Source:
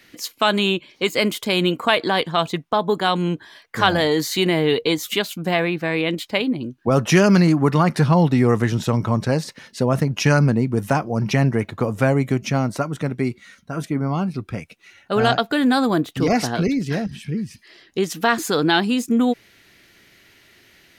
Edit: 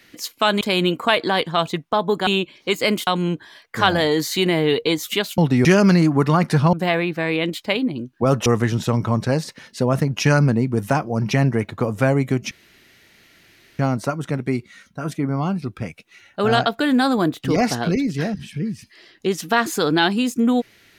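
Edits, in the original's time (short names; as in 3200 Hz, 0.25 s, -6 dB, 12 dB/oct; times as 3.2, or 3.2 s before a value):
0.61–1.41 move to 3.07
5.38–7.11 swap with 8.19–8.46
12.51 insert room tone 1.28 s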